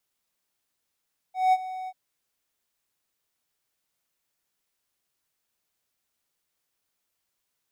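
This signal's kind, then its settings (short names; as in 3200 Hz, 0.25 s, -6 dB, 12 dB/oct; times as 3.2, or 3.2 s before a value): ADSR triangle 747 Hz, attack 0.187 s, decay 41 ms, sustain -16.5 dB, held 0.54 s, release 48 ms -13.5 dBFS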